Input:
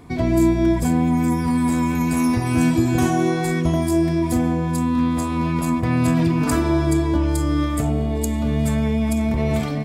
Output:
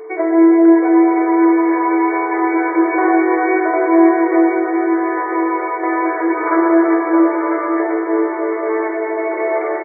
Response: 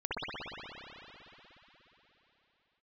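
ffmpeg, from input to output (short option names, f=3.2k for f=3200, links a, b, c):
-filter_complex "[0:a]bandreject=f=50:t=h:w=6,bandreject=f=100:t=h:w=6,bandreject=f=150:t=h:w=6,bandreject=f=200:t=h:w=6,bandreject=f=250:t=h:w=6,bandreject=f=300:t=h:w=6,bandreject=f=350:t=h:w=6,bandreject=f=400:t=h:w=6,bandreject=f=450:t=h:w=6,bandreject=f=500:t=h:w=6,asplit=2[a][b];[1:a]atrim=start_sample=2205,asetrate=26901,aresample=44100[c];[b][c]afir=irnorm=-1:irlink=0,volume=-12.5dB[d];[a][d]amix=inputs=2:normalize=0,afftfilt=real='re*between(b*sr/4096,310,2300)':imag='im*between(b*sr/4096,310,2300)':win_size=4096:overlap=0.75,aeval=exprs='val(0)+0.0178*sin(2*PI*440*n/s)':c=same,aecho=1:1:1001|2002|3003:0.398|0.0796|0.0159,volume=5.5dB"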